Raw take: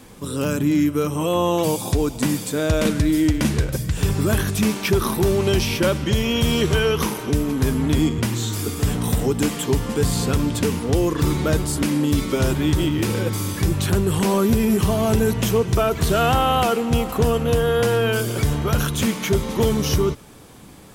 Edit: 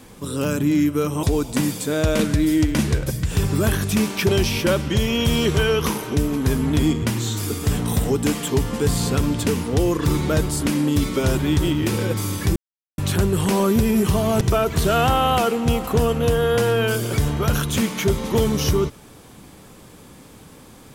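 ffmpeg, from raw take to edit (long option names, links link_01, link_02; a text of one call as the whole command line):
ffmpeg -i in.wav -filter_complex "[0:a]asplit=5[link_01][link_02][link_03][link_04][link_05];[link_01]atrim=end=1.232[link_06];[link_02]atrim=start=1.888:end=4.952[link_07];[link_03]atrim=start=5.448:end=13.72,asetpts=PTS-STARTPTS,afade=type=out:start_time=8.268:duration=0.004:curve=hsin,apad=pad_dur=0.42[link_08];[link_04]atrim=start=13.72:end=15.152,asetpts=PTS-STARTPTS,afade=type=in:duration=0.004:curve=hsin[link_09];[link_05]atrim=start=15.658[link_10];[link_06][link_07]acrossfade=duration=0.004:curve1=hsin:curve2=hsin[link_11];[link_08][link_09]concat=n=2:v=0:a=1[link_12];[link_11][link_12]acrossfade=duration=0.004:curve1=hsin:curve2=hsin[link_13];[link_13][link_10]acrossfade=duration=0.004:curve1=hsin:curve2=hsin" out.wav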